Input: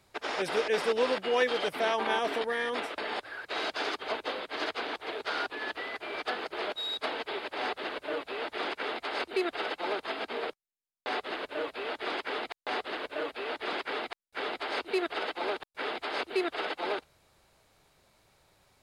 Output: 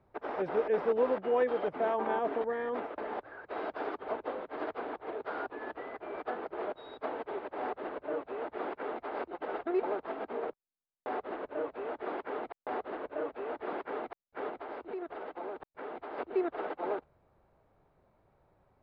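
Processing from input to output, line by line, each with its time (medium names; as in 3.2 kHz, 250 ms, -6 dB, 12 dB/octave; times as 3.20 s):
9.33–9.83 s: reverse
14.49–16.18 s: compression, threshold -34 dBFS
whole clip: low-pass 1 kHz 12 dB/octave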